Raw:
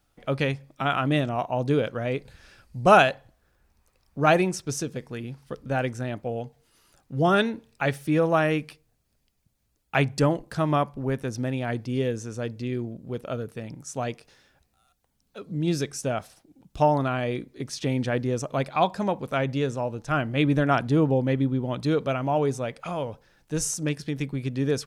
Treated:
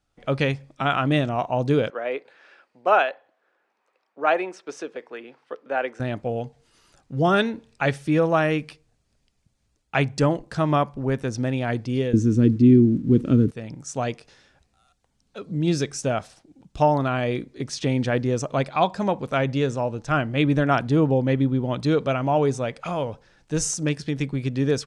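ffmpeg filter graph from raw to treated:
ffmpeg -i in.wav -filter_complex "[0:a]asettb=1/sr,asplit=3[link_01][link_02][link_03];[link_01]atrim=end=1.904[link_04];[link_02]atrim=start=1.9:end=6,asetpts=PTS-STARTPTS,afade=type=in:duration=0.004:curve=qsin,afade=type=out:start_time=4.096:duration=0.004:curve=qsin,highpass=240,acrossover=split=320 3100:gain=0.0631 1 0.141[link_05][link_06][link_07];[link_05][link_06][link_07]amix=inputs=3:normalize=0[link_08];[link_03]atrim=start=5.996[link_09];[link_04][link_08]acrossfade=duration=0.004:curve1=hsin:curve2=qsin[link_10];[link_10][link_09]acrossfade=duration=0.004:curve1=qsin:curve2=hsin,asettb=1/sr,asplit=3[link_11][link_12][link_13];[link_11]atrim=end=12.134[link_14];[link_12]atrim=start=12.13:end=13.51,asetpts=PTS-STARTPTS,afade=type=in:duration=0.004:curve=qsin,afade=type=out:start_time=1.376:duration=0.004:curve=qsin,aeval=exprs='val(0)+0.5*0.00447*sgn(val(0))':channel_layout=same,agate=range=-33dB:threshold=-39dB:ratio=3:release=100:detection=peak,lowshelf=frequency=440:width_type=q:width=3:gain=13.5[link_15];[link_13]atrim=start=13.506[link_16];[link_14][link_15]acrossfade=duration=0.004:curve1=hsin:curve2=qsin[link_17];[link_17][link_16]acrossfade=duration=0.004:curve1=qsin:curve2=hsin,lowpass=frequency=8800:width=0.5412,lowpass=frequency=8800:width=1.3066,dynaudnorm=framelen=130:gausssize=3:maxgain=9dB,volume=-5.5dB" out.wav

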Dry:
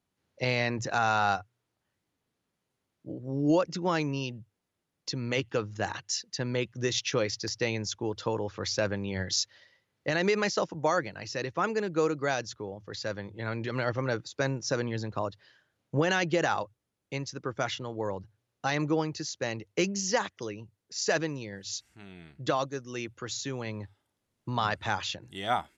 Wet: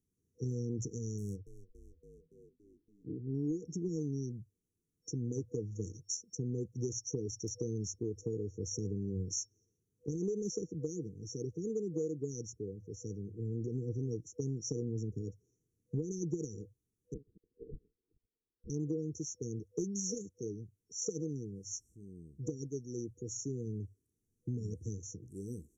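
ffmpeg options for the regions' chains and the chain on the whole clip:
ffmpeg -i in.wav -filter_complex "[0:a]asettb=1/sr,asplit=3[link_01][link_02][link_03];[link_01]atrim=end=1.184[link_04];[link_02]atrim=start=1.18:end=3.35,asetpts=PTS-STARTPTS,afade=type=in:duration=0.004:curve=qsin,afade=type=out:start_time=2.166:duration=0.004:curve=qsin,lowpass=3800,adynamicsmooth=sensitivity=7:basefreq=2200,asplit=7[link_05][link_06][link_07][link_08][link_09][link_10][link_11];[link_06]adelay=283,afreqshift=-86,volume=-16dB[link_12];[link_07]adelay=566,afreqshift=-172,volume=-20.2dB[link_13];[link_08]adelay=849,afreqshift=-258,volume=-24.3dB[link_14];[link_09]adelay=1132,afreqshift=-344,volume=-28.5dB[link_15];[link_10]adelay=1415,afreqshift=-430,volume=-32.6dB[link_16];[link_11]adelay=1698,afreqshift=-516,volume=-36.8dB[link_17];[link_05][link_12][link_13][link_14][link_15][link_16][link_17]amix=inputs=7:normalize=0,atrim=end_sample=95697[link_18];[link_03]atrim=start=3.346[link_19];[link_04][link_18]acrossfade=duration=0.004:curve1=hsin:curve2=qsin[link_20];[link_20][link_19]acrossfade=duration=0.004:curve1=qsin:curve2=hsin,asettb=1/sr,asplit=3[link_21][link_22][link_23];[link_21]atrim=end=17.144[link_24];[link_22]atrim=start=17.14:end=18.7,asetpts=PTS-STARTPTS,afade=type=in:duration=0.004:curve=qsin,afade=type=out:start_time=1.556:duration=0.004:curve=qsin,acontrast=53,lowpass=frequency=2400:width_type=q:width=0.5098,lowpass=frequency=2400:width_type=q:width=0.6013,lowpass=frequency=2400:width_type=q:width=0.9,lowpass=frequency=2400:width_type=q:width=2.563,afreqshift=-2800[link_25];[link_23]atrim=start=18.696[link_26];[link_24][link_25]acrossfade=duration=0.004:curve1=hsin:curve2=qsin[link_27];[link_27][link_26]acrossfade=duration=0.004:curve1=qsin:curve2=hsin,afftfilt=real='re*(1-between(b*sr/4096,490,5500))':imag='im*(1-between(b*sr/4096,490,5500))':win_size=4096:overlap=0.75,lowshelf=frequency=70:gain=9.5,acompressor=threshold=-29dB:ratio=6,volume=-3dB" out.wav

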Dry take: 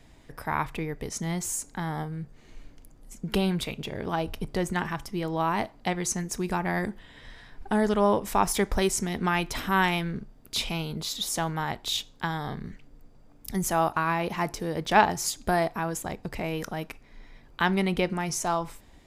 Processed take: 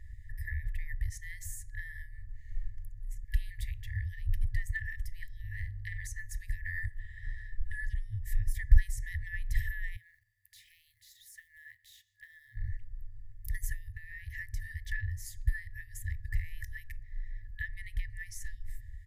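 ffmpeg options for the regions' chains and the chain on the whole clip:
ffmpeg -i in.wav -filter_complex "[0:a]asettb=1/sr,asplit=3[link_01][link_02][link_03];[link_01]atrim=end=5.404[link_04];[link_02]atrim=start=5.4:end=6.07,asetpts=PTS-STARTPTS,afade=type=in:duration=0.004:curve=qsin,afade=type=out:start_time=0.666:duration=0.004:curve=qsin,aeval=exprs='val(0)+0.00355*(sin(2*PI*50*n/s)+sin(2*PI*2*50*n/s)/2+sin(2*PI*3*50*n/s)/3+sin(2*PI*4*50*n/s)/4+sin(2*PI*5*50*n/s)/5)':channel_layout=same,asplit=2[link_05][link_06];[link_06]adelay=50,volume=-7dB[link_07];[link_05][link_07]amix=inputs=2:normalize=0,atrim=end_sample=29547[link_08];[link_03]atrim=start=6.066[link_09];[link_04][link_08]acrossfade=duration=0.004:curve1=hsin:curve2=qsin[link_10];[link_10][link_09]acrossfade=duration=0.004:curve1=qsin:curve2=hsin,asettb=1/sr,asplit=3[link_11][link_12][link_13];[link_11]atrim=end=9.964[link_14];[link_12]atrim=start=9.96:end=12.56,asetpts=PTS-STARTPTS,afade=type=in:duration=0.004:curve=qsin,afade=type=out:start_time=2.596:duration=0.004:curve=qsin,highpass=410,acompressor=threshold=-51dB:ratio=2:attack=3.2:release=140:knee=1:detection=peak,acrusher=bits=5:mode=log:mix=0:aa=0.000001[link_15];[link_13]atrim=start=12.556[link_16];[link_14][link_15]acrossfade=duration=0.004:curve1=hsin:curve2=qsin[link_17];[link_17][link_16]acrossfade=duration=0.004:curve1=qsin:curve2=hsin,acrossover=split=380[link_18][link_19];[link_19]acompressor=threshold=-31dB:ratio=10[link_20];[link_18][link_20]amix=inputs=2:normalize=0,afftfilt=real='re*(1-between(b*sr/4096,110,1700))':imag='im*(1-between(b*sr/4096,110,1700))':win_size=4096:overlap=0.75,firequalizer=gain_entry='entry(1600,0);entry(2400,-29);entry(13000,-16)':delay=0.05:min_phase=1,volume=11dB" out.wav

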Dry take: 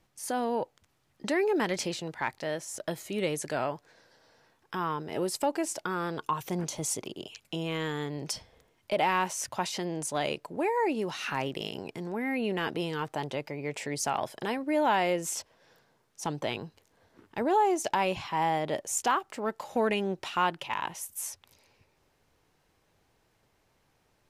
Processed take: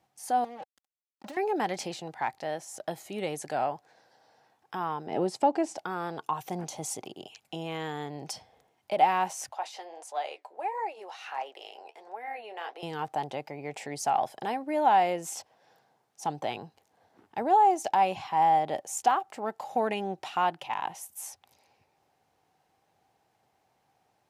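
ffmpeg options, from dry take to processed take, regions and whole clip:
ffmpeg -i in.wav -filter_complex "[0:a]asettb=1/sr,asplit=3[link_01][link_02][link_03];[link_01]atrim=end=0.444[link_04];[link_02]atrim=start=0.44:end=1.37,asetpts=PTS-STARTPTS,afade=type=in:duration=0.004:curve=qsin,afade=type=out:start_time=0.926:duration=0.004:curve=qsin,acompressor=threshold=-40dB:ratio=16:attack=3.2:release=140:knee=1:detection=peak,aecho=1:1:3.7:0.95,atrim=end_sample=41013,acrusher=bits=6:mix=0:aa=0.5[link_05];[link_03]atrim=start=1.366[link_06];[link_04][link_05]acrossfade=duration=0.004:curve1=hsin:curve2=qsin[link_07];[link_07][link_06]acrossfade=duration=0.004:curve1=qsin:curve2=hsin,asettb=1/sr,asplit=3[link_08][link_09][link_10];[link_08]atrim=end=5.074[link_11];[link_09]atrim=start=5.07:end=5.78,asetpts=PTS-STARTPTS,afade=type=in:duration=0.004:curve=qsin,afade=type=out:start_time=0.706:duration=0.004:curve=qsin,highpass=150,lowpass=6400,lowshelf=frequency=450:gain=10[link_12];[link_10]atrim=start=5.776[link_13];[link_11][link_12]acrossfade=duration=0.004:curve1=hsin:curve2=qsin[link_14];[link_14][link_13]acrossfade=duration=0.004:curve1=qsin:curve2=hsin,asettb=1/sr,asplit=3[link_15][link_16][link_17];[link_15]atrim=end=9.524[link_18];[link_16]atrim=start=9.52:end=12.83,asetpts=PTS-STARTPTS,afade=type=in:duration=0.004:curve=qsin,afade=type=out:start_time=3.306:duration=0.004:curve=qsin,highpass=frequency=480:width=0.5412,highpass=frequency=480:width=1.3066,highshelf=frequency=8400:gain=-8.5,flanger=delay=4.5:depth=9.2:regen=-54:speed=1.5:shape=sinusoidal[link_19];[link_17]atrim=start=12.826[link_20];[link_18][link_19]acrossfade=duration=0.004:curve1=hsin:curve2=qsin[link_21];[link_21][link_20]acrossfade=duration=0.004:curve1=qsin:curve2=hsin,highpass=100,equalizer=frequency=770:width=4.1:gain=13.5,volume=-4dB" out.wav

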